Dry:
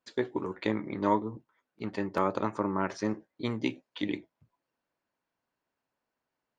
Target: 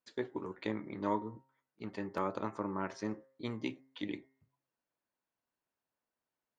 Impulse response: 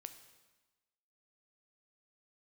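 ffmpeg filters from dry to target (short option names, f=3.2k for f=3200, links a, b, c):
-af "bandreject=f=133.4:t=h:w=4,bandreject=f=266.8:t=h:w=4,bandreject=f=400.2:t=h:w=4,bandreject=f=533.6:t=h:w=4,bandreject=f=667:t=h:w=4,bandreject=f=800.4:t=h:w=4,bandreject=f=933.8:t=h:w=4,bandreject=f=1.0672k:t=h:w=4,bandreject=f=1.2006k:t=h:w=4,bandreject=f=1.334k:t=h:w=4,bandreject=f=1.4674k:t=h:w=4,bandreject=f=1.6008k:t=h:w=4,bandreject=f=1.7342k:t=h:w=4,bandreject=f=1.8676k:t=h:w=4,bandreject=f=2.001k:t=h:w=4,bandreject=f=2.1344k:t=h:w=4,volume=-7dB"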